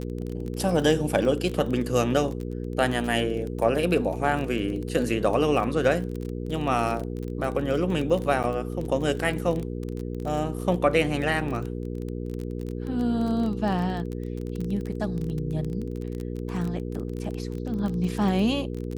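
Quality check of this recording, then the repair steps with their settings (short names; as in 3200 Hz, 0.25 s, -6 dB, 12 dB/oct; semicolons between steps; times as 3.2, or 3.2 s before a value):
crackle 23/s -29 dBFS
hum 60 Hz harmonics 8 -32 dBFS
8.43–8.44 gap 8.6 ms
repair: de-click; de-hum 60 Hz, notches 8; interpolate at 8.43, 8.6 ms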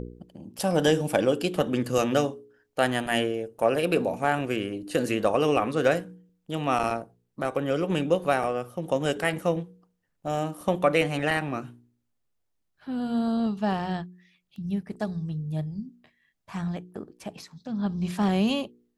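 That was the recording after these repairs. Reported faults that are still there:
none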